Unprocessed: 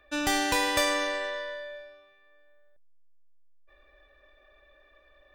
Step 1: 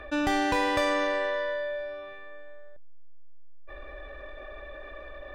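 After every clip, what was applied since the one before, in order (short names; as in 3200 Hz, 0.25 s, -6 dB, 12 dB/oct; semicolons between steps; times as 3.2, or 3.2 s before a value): LPF 1400 Hz 6 dB/oct; fast leveller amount 50%; gain +1.5 dB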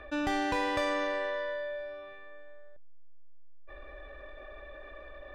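high shelf 9700 Hz -6 dB; gain -4.5 dB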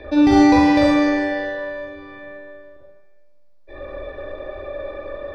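reverb RT60 1.0 s, pre-delay 40 ms, DRR -5.5 dB; gain +1.5 dB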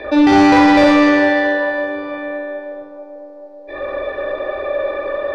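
overdrive pedal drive 19 dB, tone 2700 Hz, clips at -2.5 dBFS; narrowing echo 0.438 s, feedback 71%, band-pass 520 Hz, level -12.5 dB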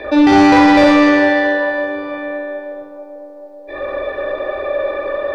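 bit-crush 12-bit; gain +1 dB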